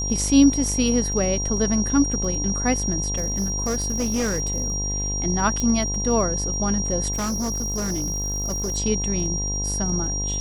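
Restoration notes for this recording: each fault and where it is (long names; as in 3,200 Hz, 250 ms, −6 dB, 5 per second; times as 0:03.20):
mains buzz 50 Hz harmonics 21 −28 dBFS
surface crackle 22 per second −32 dBFS
whistle 5,700 Hz −26 dBFS
0:03.17–0:04.90: clipping −19.5 dBFS
0:05.60: click −12 dBFS
0:07.12–0:08.77: clipping −22 dBFS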